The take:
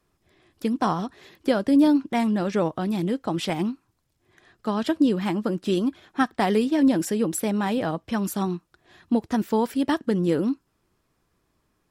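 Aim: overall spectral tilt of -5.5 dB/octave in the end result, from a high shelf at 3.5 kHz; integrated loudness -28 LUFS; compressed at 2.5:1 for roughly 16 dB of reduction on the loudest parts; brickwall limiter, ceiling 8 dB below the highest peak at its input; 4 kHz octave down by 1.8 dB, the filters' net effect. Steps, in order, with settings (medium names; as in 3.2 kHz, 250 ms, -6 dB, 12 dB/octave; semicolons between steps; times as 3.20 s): treble shelf 3.5 kHz +6 dB; peaking EQ 4 kHz -6.5 dB; compression 2.5:1, threshold -40 dBFS; trim +12 dB; peak limiter -18.5 dBFS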